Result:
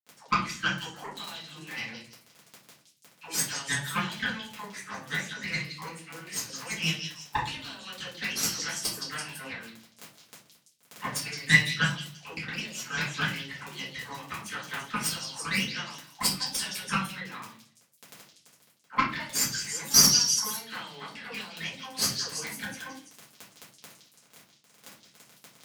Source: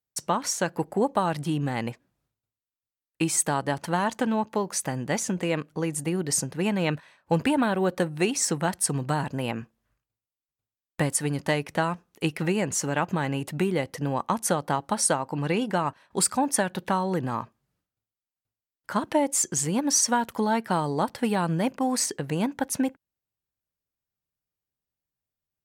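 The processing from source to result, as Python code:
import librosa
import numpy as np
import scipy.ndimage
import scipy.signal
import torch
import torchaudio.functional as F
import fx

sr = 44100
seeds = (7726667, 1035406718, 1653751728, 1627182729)

p1 = fx.dispersion(x, sr, late='lows', ms=123.0, hz=510.0)
p2 = fx.auto_wah(p1, sr, base_hz=500.0, top_hz=4800.0, q=5.6, full_db=-19.5, direction='up')
p3 = fx.dmg_crackle(p2, sr, seeds[0], per_s=18.0, level_db=-36.0)
p4 = fx.cheby_harmonics(p3, sr, harmonics=(6, 7), levels_db=(-15, -24), full_scale_db=-18.5)
p5 = fx.dynamic_eq(p4, sr, hz=650.0, q=1.0, threshold_db=-60.0, ratio=4.0, max_db=-6)
p6 = scipy.signal.sosfilt(scipy.signal.butter(2, 130.0, 'highpass', fs=sr, output='sos'), p5)
p7 = fx.peak_eq(p6, sr, hz=170.0, db=5.5, octaves=1.4)
p8 = p7 + fx.echo_stepped(p7, sr, ms=167, hz=4400.0, octaves=0.7, feedback_pct=70, wet_db=-3.5, dry=0)
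p9 = fx.room_shoebox(p8, sr, seeds[1], volume_m3=31.0, walls='mixed', distance_m=1.3)
y = p9 * 10.0 ** (6.5 / 20.0)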